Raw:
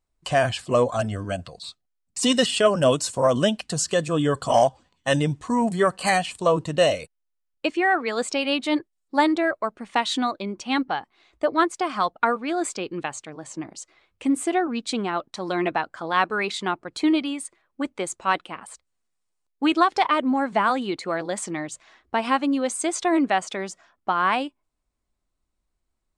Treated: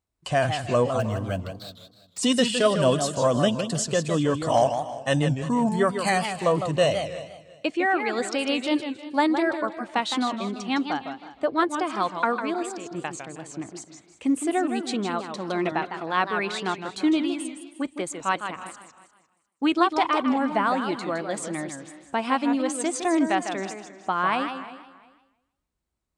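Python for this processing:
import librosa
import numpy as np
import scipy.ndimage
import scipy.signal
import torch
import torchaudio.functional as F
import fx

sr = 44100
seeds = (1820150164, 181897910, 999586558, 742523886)

y = fx.median_filter(x, sr, points=5, at=(0.99, 2.18))
y = scipy.signal.sosfilt(scipy.signal.butter(2, 70.0, 'highpass', fs=sr, output='sos'), y)
y = fx.low_shelf(y, sr, hz=200.0, db=5.5)
y = fx.level_steps(y, sr, step_db=12, at=(12.54, 12.95))
y = fx.echo_feedback(y, sr, ms=352, feedback_pct=22, wet_db=-18)
y = fx.echo_warbled(y, sr, ms=157, feedback_pct=30, rate_hz=2.8, cents=186, wet_db=-8.0)
y = y * librosa.db_to_amplitude(-3.0)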